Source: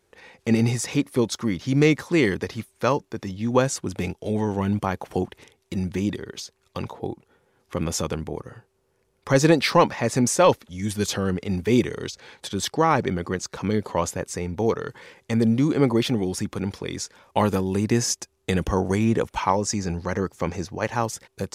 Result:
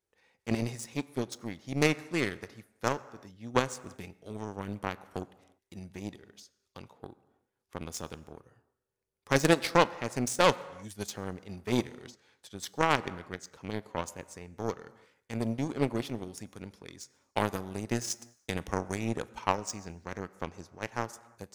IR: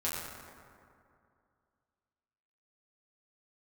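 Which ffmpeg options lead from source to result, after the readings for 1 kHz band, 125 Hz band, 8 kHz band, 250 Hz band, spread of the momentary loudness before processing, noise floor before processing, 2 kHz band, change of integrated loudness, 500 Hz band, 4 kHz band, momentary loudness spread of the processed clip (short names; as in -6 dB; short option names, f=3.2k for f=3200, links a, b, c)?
-7.0 dB, -11.5 dB, -10.0 dB, -11.5 dB, 13 LU, -69 dBFS, -5.0 dB, -9.0 dB, -9.5 dB, -7.0 dB, 20 LU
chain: -filter_complex "[0:a]highshelf=f=5.9k:g=6,aeval=exprs='0.596*(cos(1*acos(clip(val(0)/0.596,-1,1)))-cos(1*PI/2))+0.237*(cos(3*acos(clip(val(0)/0.596,-1,1)))-cos(3*PI/2))+0.075*(cos(5*acos(clip(val(0)/0.596,-1,1)))-cos(5*PI/2))+0.0299*(cos(7*acos(clip(val(0)/0.596,-1,1)))-cos(7*PI/2))':c=same,asplit=2[a][b];[1:a]atrim=start_sample=2205,afade=t=out:st=0.4:d=0.01,atrim=end_sample=18081,lowshelf=f=150:g=-10[c];[b][c]afir=irnorm=-1:irlink=0,volume=-20dB[d];[a][d]amix=inputs=2:normalize=0"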